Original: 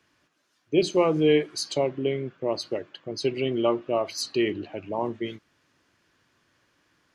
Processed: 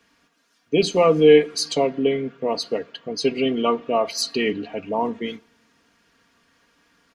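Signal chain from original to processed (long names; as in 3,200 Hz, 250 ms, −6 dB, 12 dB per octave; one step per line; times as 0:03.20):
comb filter 4.3 ms, depth 74%
on a send: convolution reverb RT60 1.1 s, pre-delay 7 ms, DRR 22.5 dB
on the sum: level +4 dB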